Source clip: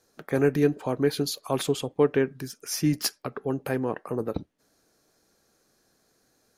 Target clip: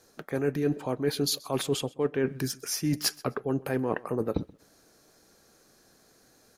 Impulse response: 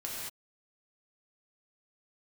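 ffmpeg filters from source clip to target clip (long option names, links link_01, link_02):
-af "areverse,acompressor=threshold=-31dB:ratio=6,areverse,aecho=1:1:129|258:0.0708|0.0142,volume=6.5dB"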